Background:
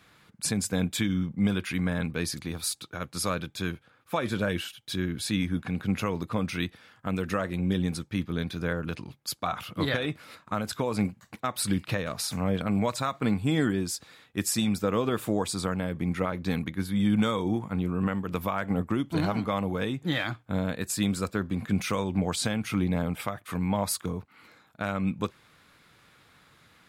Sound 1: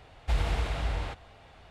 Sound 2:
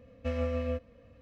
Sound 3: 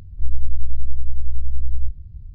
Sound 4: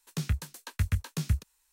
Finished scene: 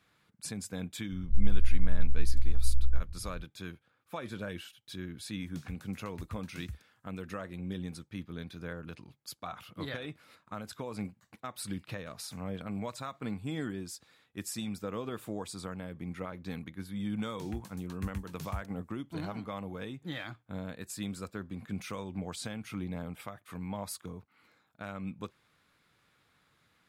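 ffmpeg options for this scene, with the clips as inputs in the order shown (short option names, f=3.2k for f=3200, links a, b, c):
-filter_complex "[4:a]asplit=2[a][b];[0:a]volume=-11dB[c];[b]dynaudnorm=f=120:g=5:m=5dB[d];[3:a]atrim=end=2.34,asetpts=PTS-STARTPTS,volume=-5.5dB,afade=t=in:d=0.004:c=hsin,afade=t=out:st=2.336:d=0.004:c=hsin,adelay=1110[e];[a]atrim=end=1.72,asetpts=PTS-STARTPTS,volume=-16dB,afade=t=in:d=0.004:c=hsin,afade=t=out:st=1.716:d=0.004:c=hsin,adelay=5390[f];[d]atrim=end=1.72,asetpts=PTS-STARTPTS,volume=-16dB,afade=t=in:d=0.004:c=hsin,afade=t=out:st=1.716:d=0.004:c=hsin,adelay=17230[g];[c][e][f][g]amix=inputs=4:normalize=0"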